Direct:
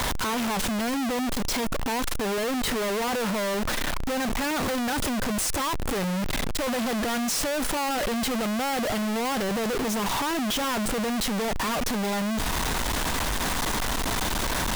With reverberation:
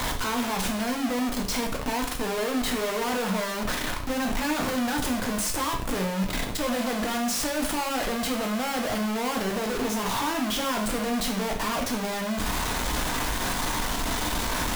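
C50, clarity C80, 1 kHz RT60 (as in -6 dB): 7.5 dB, 12.0 dB, 0.55 s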